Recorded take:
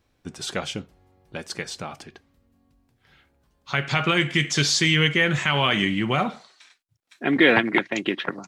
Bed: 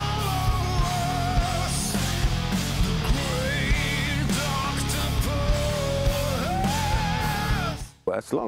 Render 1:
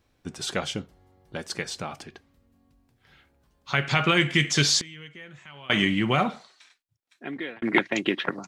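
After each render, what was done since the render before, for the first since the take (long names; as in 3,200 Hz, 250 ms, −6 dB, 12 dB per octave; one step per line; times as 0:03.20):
0:00.62–0:01.48: notch filter 2,500 Hz, Q 11
0:04.79–0:05.70: gate with flip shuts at −18 dBFS, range −24 dB
0:06.23–0:07.62: fade out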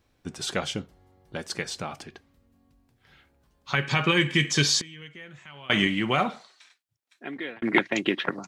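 0:03.75–0:05.02: notch comb filter 690 Hz
0:05.87–0:07.45: low-shelf EQ 170 Hz −8 dB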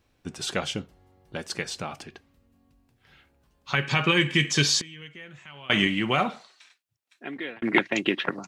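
parametric band 2,700 Hz +4 dB 0.2 octaves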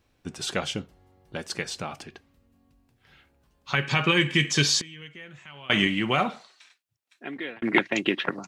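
no processing that can be heard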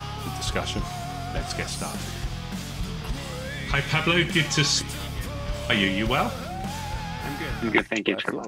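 mix in bed −7.5 dB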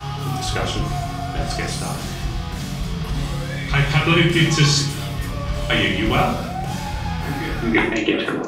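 rectangular room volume 810 cubic metres, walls furnished, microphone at 3.4 metres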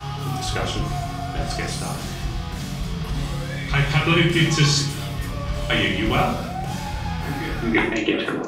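level −2 dB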